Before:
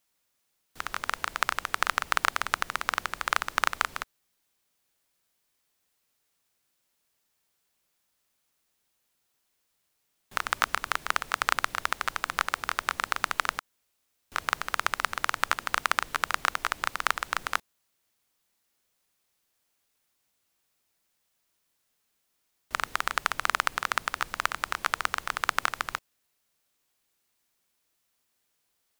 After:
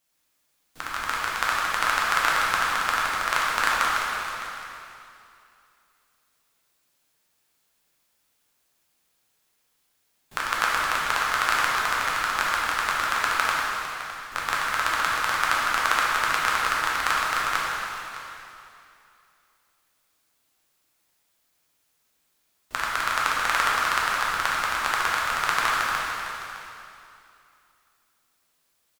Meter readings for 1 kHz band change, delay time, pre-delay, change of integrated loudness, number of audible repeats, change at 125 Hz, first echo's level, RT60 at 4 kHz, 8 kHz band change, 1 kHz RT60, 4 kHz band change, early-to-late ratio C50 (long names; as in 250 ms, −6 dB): +6.0 dB, 610 ms, 4 ms, +5.0 dB, 1, +5.5 dB, −14.0 dB, 2.6 s, +5.5 dB, 2.7 s, +5.5 dB, −2.5 dB